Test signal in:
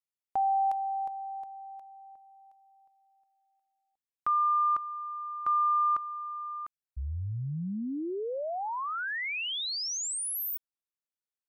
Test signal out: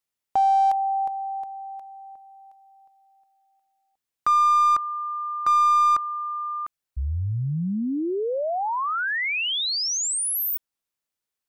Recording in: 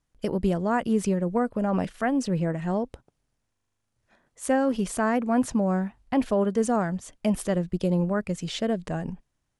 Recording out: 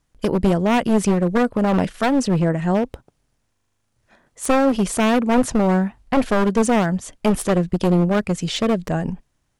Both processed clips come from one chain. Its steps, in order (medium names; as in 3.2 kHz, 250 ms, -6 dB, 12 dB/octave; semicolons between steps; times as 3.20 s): one-sided wavefolder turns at -23.5 dBFS; trim +8 dB